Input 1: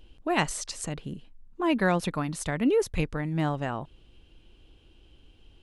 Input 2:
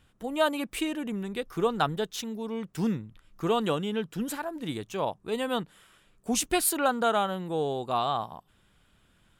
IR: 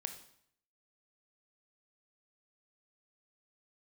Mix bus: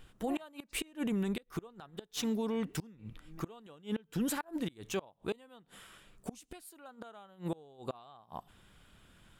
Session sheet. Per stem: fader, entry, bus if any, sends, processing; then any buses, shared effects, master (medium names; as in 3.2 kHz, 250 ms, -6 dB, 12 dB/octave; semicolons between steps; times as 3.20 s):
-6.5 dB, 0.00 s, send -16.5 dB, comb 2.6 ms, depth 44%; logarithmic tremolo 2.7 Hz, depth 25 dB; auto duck -20 dB, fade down 1.05 s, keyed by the second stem
+2.5 dB, 0.00 s, send -20 dB, none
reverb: on, RT60 0.65 s, pre-delay 20 ms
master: inverted gate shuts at -19 dBFS, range -30 dB; peak limiter -25.5 dBFS, peak gain reduction 8 dB